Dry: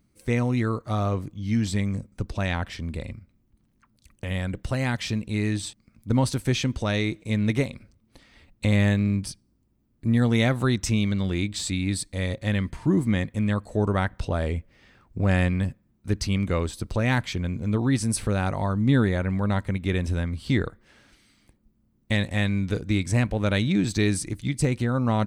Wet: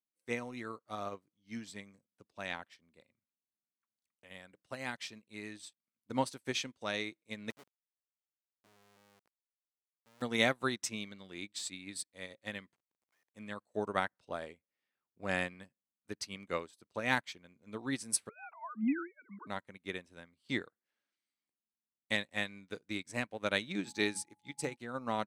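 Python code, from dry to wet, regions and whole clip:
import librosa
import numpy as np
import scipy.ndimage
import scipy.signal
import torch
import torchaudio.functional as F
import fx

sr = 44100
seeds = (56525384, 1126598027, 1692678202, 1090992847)

y = fx.chain(x, sr, fx.level_steps(step_db=13),
    fx.schmitt(flips_db=-28.0), at=(7.5, 10.22))
y = fx.chain(y, sr, fx.highpass(hz=1000.0, slope=24),
    fx.level_steps(step_db=19),
    fx.schmitt(flips_db=-47.5), at=(12.75, 13.35))
y = fx.chain(y, sr, fx.sine_speech(),
    fx.fixed_phaser(hz=2700.0, stages=8), at=(18.29, 19.47))
y = fx.hum_notches(y, sr, base_hz=50, count=5, at=(23.84, 24.75), fade=0.02)
y = fx.dmg_tone(y, sr, hz=840.0, level_db=-44.0, at=(23.84, 24.75), fade=0.02)
y = scipy.signal.sosfilt(scipy.signal.butter(2, 170.0, 'highpass', fs=sr, output='sos'), y)
y = fx.low_shelf(y, sr, hz=300.0, db=-12.0)
y = fx.upward_expand(y, sr, threshold_db=-45.0, expansion=2.5)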